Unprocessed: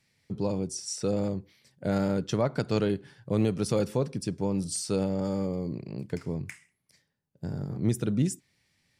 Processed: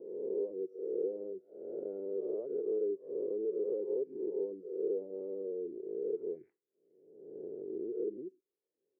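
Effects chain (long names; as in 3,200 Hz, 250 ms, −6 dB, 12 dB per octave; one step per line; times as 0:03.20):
peak hold with a rise ahead of every peak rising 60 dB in 1.13 s
reverb reduction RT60 0.51 s
in parallel at −2 dB: brickwall limiter −19 dBFS, peak gain reduction 7 dB
on the sum: downward compressor 3 to 1, threshold −26 dBFS, peak gain reduction 7.5 dB
flat-topped band-pass 410 Hz, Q 3.5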